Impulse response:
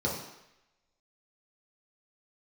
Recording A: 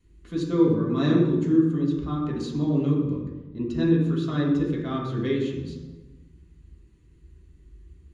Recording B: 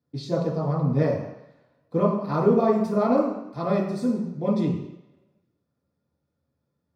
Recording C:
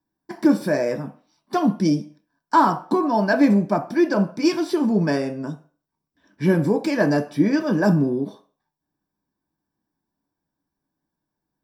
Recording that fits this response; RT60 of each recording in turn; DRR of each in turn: B; 1.2, 0.85, 0.40 seconds; −4.5, −4.5, 5.0 decibels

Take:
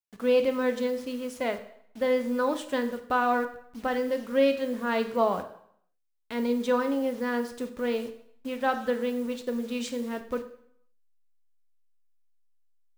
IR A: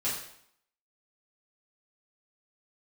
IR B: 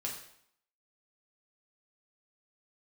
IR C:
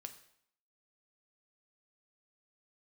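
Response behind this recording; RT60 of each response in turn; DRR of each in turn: C; 0.70, 0.70, 0.70 seconds; −10.5, −2.5, 6.5 decibels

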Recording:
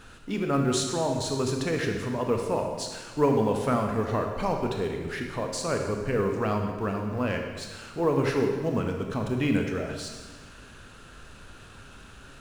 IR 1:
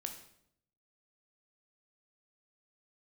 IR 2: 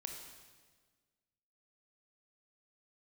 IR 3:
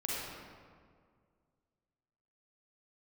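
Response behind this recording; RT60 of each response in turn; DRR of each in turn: 2; 0.70, 1.5, 2.0 seconds; 4.5, 2.5, −6.0 decibels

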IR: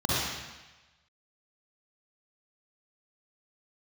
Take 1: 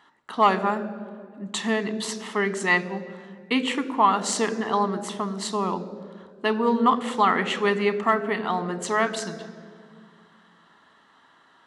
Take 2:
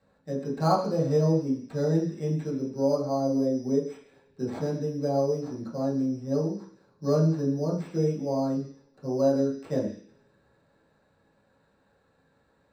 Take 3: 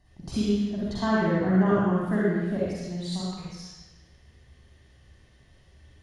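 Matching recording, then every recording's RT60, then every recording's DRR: 3; 2.1 s, non-exponential decay, 1.1 s; 12.5, −7.0, −7.0 decibels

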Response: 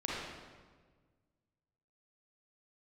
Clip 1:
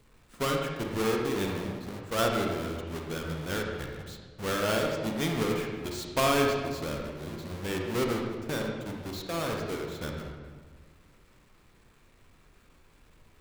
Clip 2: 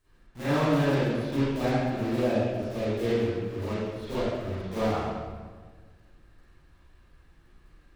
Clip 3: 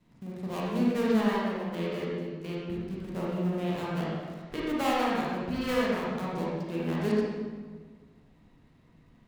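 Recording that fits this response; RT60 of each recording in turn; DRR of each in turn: 3; 1.5, 1.5, 1.5 seconds; 0.5, −14.5, −6.0 decibels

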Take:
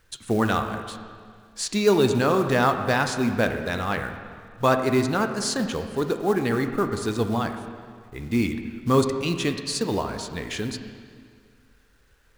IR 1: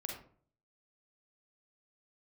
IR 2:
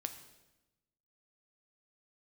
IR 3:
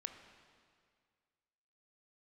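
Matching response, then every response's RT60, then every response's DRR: 3; 0.50, 1.0, 2.0 seconds; 0.5, 7.0, 6.5 decibels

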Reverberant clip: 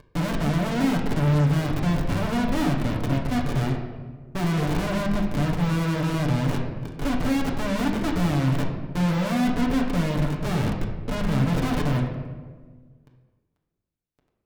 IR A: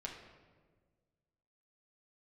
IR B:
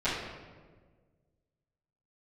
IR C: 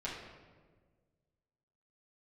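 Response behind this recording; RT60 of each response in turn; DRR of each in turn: A; 1.5, 1.5, 1.5 seconds; −1.5, −16.5, −7.5 decibels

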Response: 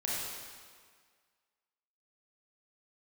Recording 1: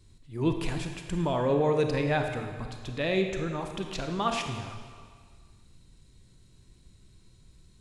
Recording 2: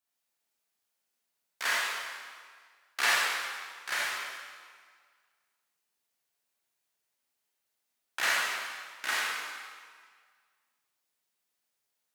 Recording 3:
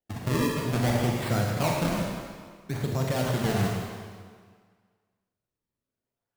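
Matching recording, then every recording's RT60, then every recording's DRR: 2; 1.8, 1.8, 1.8 seconds; 4.5, −6.5, −1.5 decibels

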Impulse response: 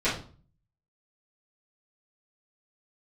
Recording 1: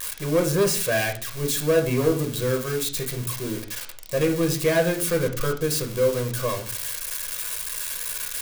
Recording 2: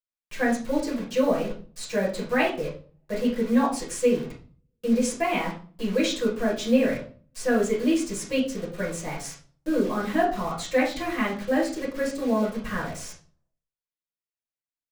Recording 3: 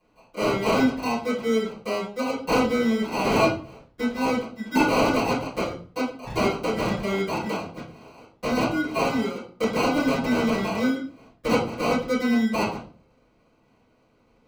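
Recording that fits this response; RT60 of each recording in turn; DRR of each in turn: 3; 0.45, 0.45, 0.45 seconds; 3.0, −6.5, −13.0 decibels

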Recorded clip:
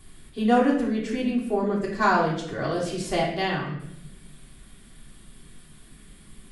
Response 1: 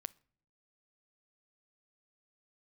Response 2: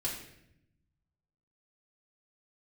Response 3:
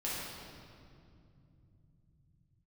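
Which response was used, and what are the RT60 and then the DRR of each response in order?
2; non-exponential decay, 0.80 s, 2.5 s; 17.0, −5.5, −8.0 decibels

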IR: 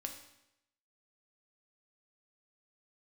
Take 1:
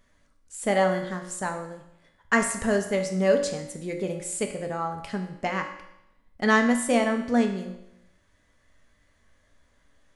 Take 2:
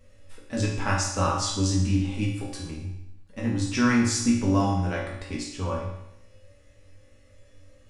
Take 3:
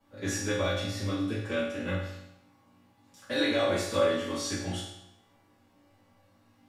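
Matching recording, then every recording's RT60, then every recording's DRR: 1; 0.85, 0.85, 0.85 seconds; 3.5, −5.0, −13.5 decibels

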